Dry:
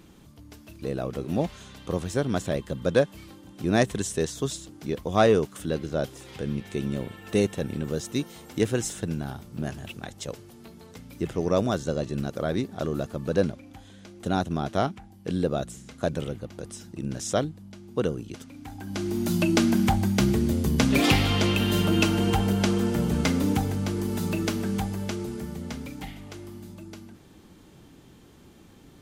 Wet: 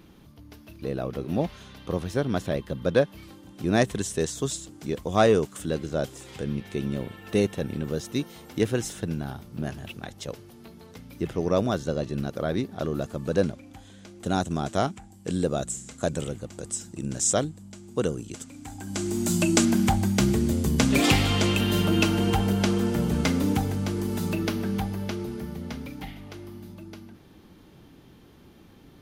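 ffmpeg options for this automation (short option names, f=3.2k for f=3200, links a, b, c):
-af "asetnsamples=n=441:p=0,asendcmd='3.23 equalizer g -1;4.19 equalizer g 5;6.44 equalizer g -5;13.02 equalizer g 4;14.29 equalizer g 15;19.65 equalizer g 6;21.61 equalizer g -1;24.35 equalizer g -10.5',equalizer=f=7.7k:t=o:w=0.52:g=-10"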